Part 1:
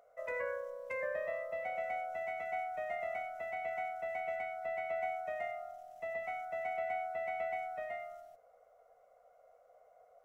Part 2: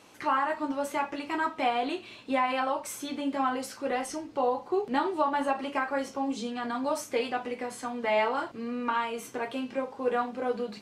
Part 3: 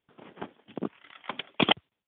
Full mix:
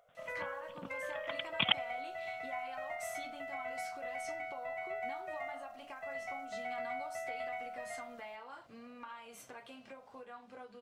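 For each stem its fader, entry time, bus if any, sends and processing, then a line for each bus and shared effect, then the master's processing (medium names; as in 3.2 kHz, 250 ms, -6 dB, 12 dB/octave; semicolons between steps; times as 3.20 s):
-0.5 dB, 0.00 s, no send, none
-7.5 dB, 0.15 s, no send, compression 12:1, threshold -35 dBFS, peak gain reduction 14.5 dB
-3.0 dB, 0.00 s, no send, peaking EQ 450 Hz -12.5 dB 2 oct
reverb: none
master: peaking EQ 330 Hz -9.5 dB 1.6 oct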